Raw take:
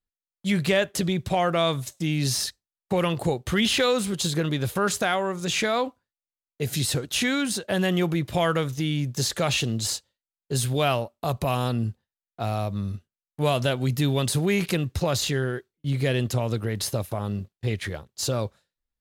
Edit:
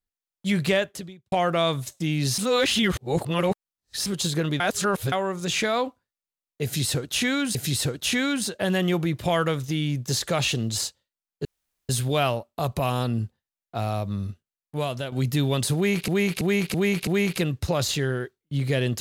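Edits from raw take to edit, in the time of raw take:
0.75–1.32 s: fade out quadratic
2.38–4.06 s: reverse
4.60–5.12 s: reverse
6.64–7.55 s: loop, 2 plays
10.54 s: insert room tone 0.44 s
12.94–13.77 s: fade out, to -9 dB
14.40–14.73 s: loop, 5 plays

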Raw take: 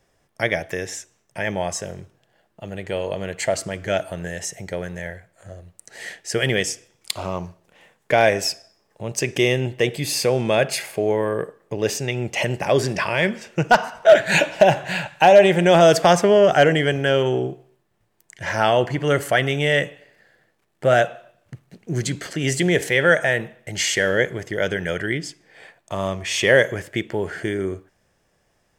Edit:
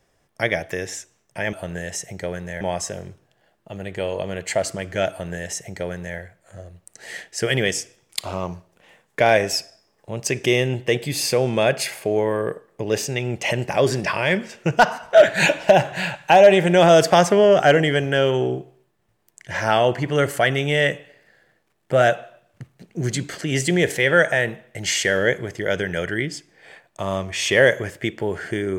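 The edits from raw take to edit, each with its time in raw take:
4.02–5.10 s: copy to 1.53 s

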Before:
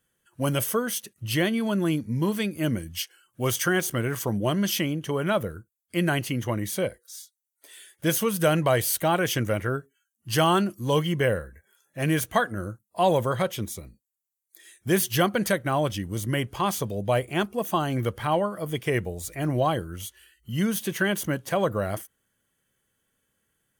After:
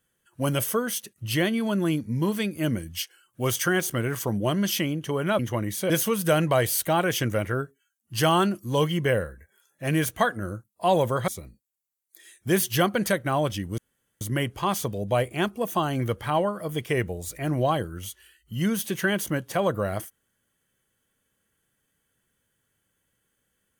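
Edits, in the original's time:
5.39–6.34 s: delete
6.85–8.05 s: delete
13.43–13.68 s: delete
16.18 s: insert room tone 0.43 s

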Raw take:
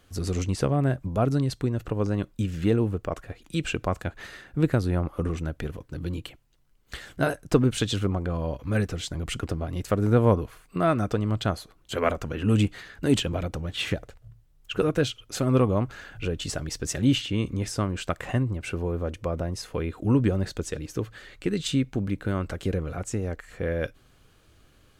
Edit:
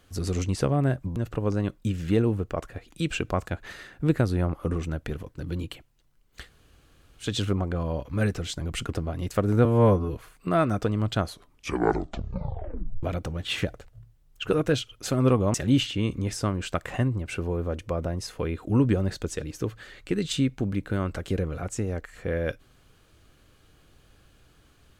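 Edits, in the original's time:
1.16–1.70 s: delete
6.96–7.80 s: room tone, crossfade 0.16 s
10.19–10.44 s: stretch 2×
11.57 s: tape stop 1.75 s
15.83–16.89 s: delete

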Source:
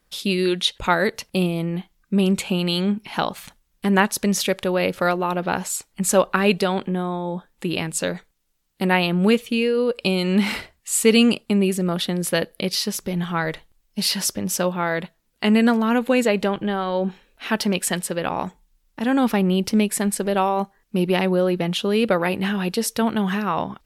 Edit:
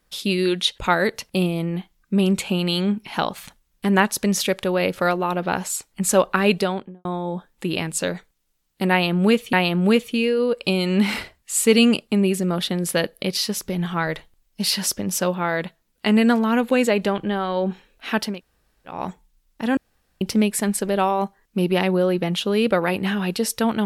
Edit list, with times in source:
6.57–7.05 s: studio fade out
8.91–9.53 s: loop, 2 plays
17.68–18.34 s: room tone, crossfade 0.24 s
19.15–19.59 s: room tone

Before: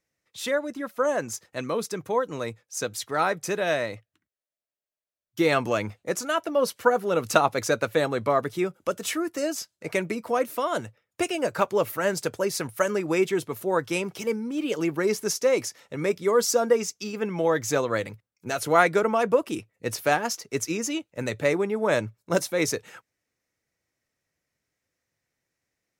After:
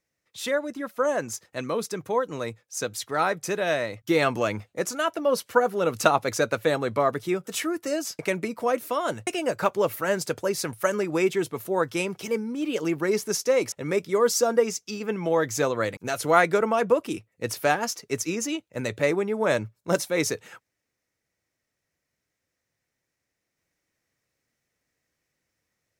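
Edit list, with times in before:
shorten pauses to 0.12 s

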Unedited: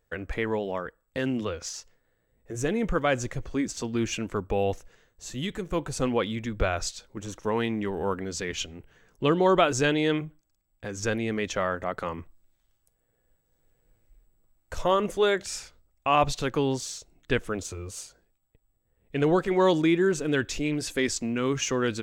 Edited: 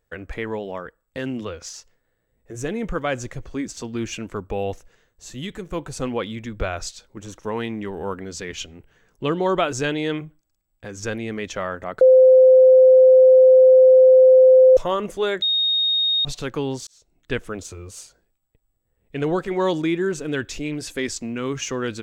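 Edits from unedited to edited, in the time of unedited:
12.01–14.77 s: bleep 517 Hz -7.5 dBFS
15.42–16.25 s: bleep 3.72 kHz -17 dBFS
16.87–17.33 s: fade in

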